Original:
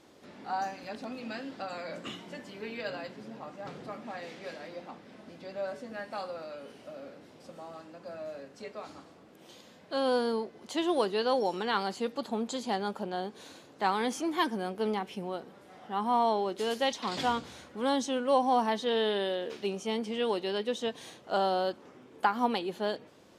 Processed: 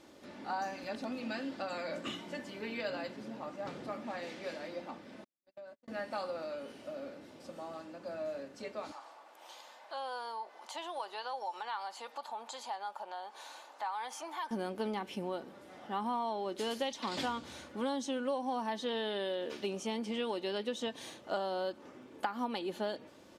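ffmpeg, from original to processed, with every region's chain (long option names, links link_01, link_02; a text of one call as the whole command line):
ffmpeg -i in.wav -filter_complex "[0:a]asettb=1/sr,asplit=3[link_01][link_02][link_03];[link_01]atrim=end=5.244[link_04];[link_02]atrim=start=5.24:end=5.88,asetpts=PTS-STARTPTS,afade=type=in:duration=0.004:curve=qsin,afade=type=out:start_time=0.636:duration=0.004:curve=qsin,agate=range=-56dB:threshold=-38dB:ratio=16:release=100:detection=peak,acompressor=threshold=-48dB:ratio=10:attack=3.2:release=140:knee=1:detection=peak[link_05];[link_03]atrim=start=5.876[link_06];[link_04][link_05]acrossfade=duration=0.004:curve1=hsin:curve2=qsin[link_07];[link_07][link_06]acrossfade=duration=0.004:curve1=qsin:curve2=hsin,asettb=1/sr,asplit=3[link_08][link_09][link_10];[link_08]atrim=end=8.924[link_11];[link_09]atrim=start=8.92:end=14.51,asetpts=PTS-STARTPTS,afade=type=in:duration=0.004:curve=qsin,afade=type=out:start_time=5.586:duration=0.004:curve=qsin,highpass=frequency=850:width_type=q:width=2.9,acompressor=threshold=-46dB:ratio=2:attack=3.2:release=140:knee=1:detection=peak[link_12];[link_10]atrim=start=14.506[link_13];[link_11][link_12]acrossfade=duration=0.004:curve1=hsin:curve2=qsin[link_14];[link_14][link_13]acrossfade=duration=0.004:curve1=qsin:curve2=hsin,aecho=1:1:3.4:0.3,acompressor=threshold=-32dB:ratio=6" out.wav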